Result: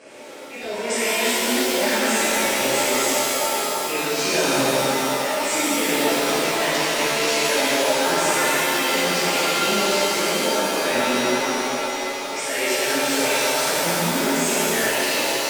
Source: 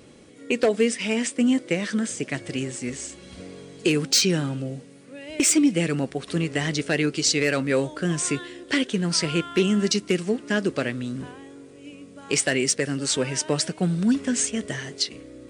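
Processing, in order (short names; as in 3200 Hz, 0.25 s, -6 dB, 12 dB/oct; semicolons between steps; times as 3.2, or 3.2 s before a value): speaker cabinet 410–9500 Hz, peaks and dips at 600 Hz +8 dB, 1600 Hz +5 dB, 2300 Hz +4 dB, 3700 Hz -7 dB; reverse; compressor 6:1, threshold -32 dBFS, peak gain reduction 17.5 dB; reverse; transient shaper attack -12 dB, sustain +7 dB; shimmer reverb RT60 3.2 s, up +7 st, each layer -2 dB, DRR -10.5 dB; gain +2.5 dB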